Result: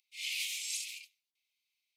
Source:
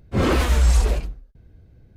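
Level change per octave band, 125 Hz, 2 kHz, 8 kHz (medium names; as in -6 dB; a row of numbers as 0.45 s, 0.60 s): under -40 dB, -10.0 dB, -4.0 dB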